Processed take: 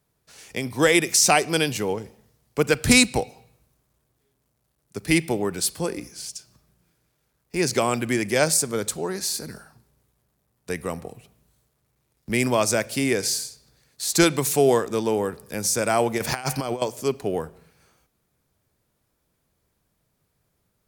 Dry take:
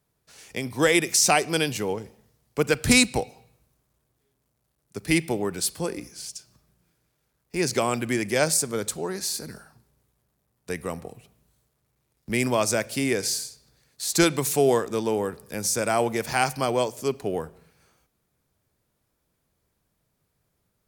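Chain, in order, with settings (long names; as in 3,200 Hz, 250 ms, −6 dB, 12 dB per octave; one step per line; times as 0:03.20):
0:16.18–0:16.82: compressor whose output falls as the input rises −28 dBFS, ratio −0.5
level +2 dB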